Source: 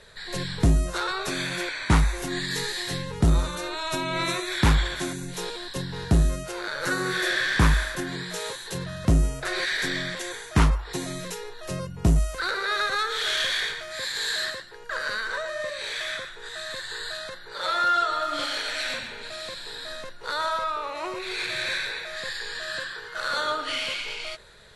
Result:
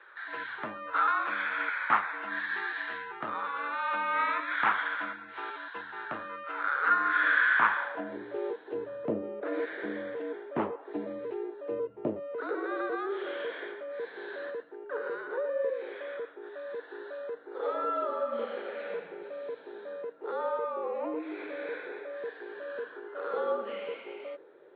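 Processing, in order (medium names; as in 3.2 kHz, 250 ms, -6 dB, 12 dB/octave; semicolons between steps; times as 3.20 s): mistuned SSB -61 Hz 240–3300 Hz; band-pass sweep 1.3 kHz -> 450 Hz, 7.67–8.18 s; trim +5.5 dB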